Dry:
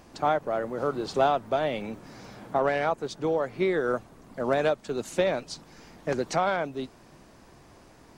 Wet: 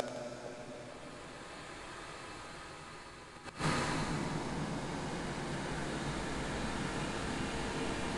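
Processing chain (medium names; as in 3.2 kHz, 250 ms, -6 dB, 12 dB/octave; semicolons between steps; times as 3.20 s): median filter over 5 samples; gate -42 dBFS, range -6 dB; in parallel at +3 dB: peak limiter -23.5 dBFS, peak gain reduction 11.5 dB; on the sum: sample-rate reducer 5.8 kHz, jitter 20%; Paulstretch 18×, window 0.25 s, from 5.41 s; inverted gate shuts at -29 dBFS, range -24 dB; on a send: two-band feedback delay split 750 Hz, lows 461 ms, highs 81 ms, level -10 dB; on the sum: resampled via 22.05 kHz; trim +10.5 dB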